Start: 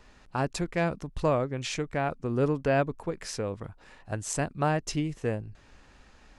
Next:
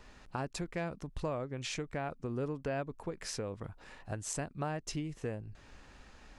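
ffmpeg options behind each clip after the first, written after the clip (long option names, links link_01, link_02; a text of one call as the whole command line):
ffmpeg -i in.wav -af "acompressor=threshold=-38dB:ratio=2.5" out.wav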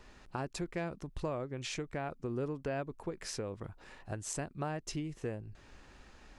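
ffmpeg -i in.wav -af "equalizer=frequency=360:width_type=o:width=0.25:gain=4.5,volume=-1dB" out.wav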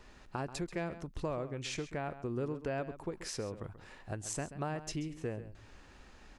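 ffmpeg -i in.wav -filter_complex "[0:a]asplit=2[link_01][link_02];[link_02]adelay=134.1,volume=-13dB,highshelf=frequency=4000:gain=-3.02[link_03];[link_01][link_03]amix=inputs=2:normalize=0" out.wav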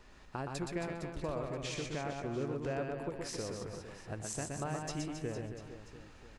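ffmpeg -i in.wav -af "aecho=1:1:120|270|457.5|691.9|984.8:0.631|0.398|0.251|0.158|0.1,volume=-2dB" out.wav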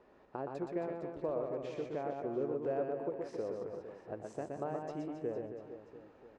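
ffmpeg -i in.wav -af "bandpass=frequency=490:width_type=q:width=1.3:csg=0,volume=4dB" out.wav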